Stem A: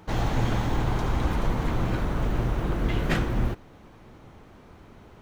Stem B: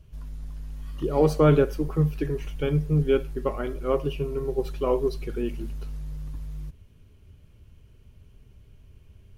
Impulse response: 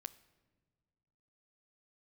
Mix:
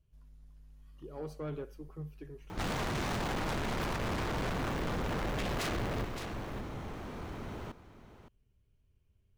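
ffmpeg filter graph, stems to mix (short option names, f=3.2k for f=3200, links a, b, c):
-filter_complex "[0:a]aeval=exprs='0.266*(cos(1*acos(clip(val(0)/0.266,-1,1)))-cos(1*PI/2))+0.0596*(cos(5*acos(clip(val(0)/0.266,-1,1)))-cos(5*PI/2))':c=same,aeval=exprs='0.075*(abs(mod(val(0)/0.075+3,4)-2)-1)':c=same,adelay=2500,volume=2dB,asplit=2[a][b];[b]volume=-14.5dB[c];[1:a]volume=-19.5dB[d];[c]aecho=0:1:566:1[e];[a][d][e]amix=inputs=3:normalize=0,asoftclip=type=tanh:threshold=-32dB"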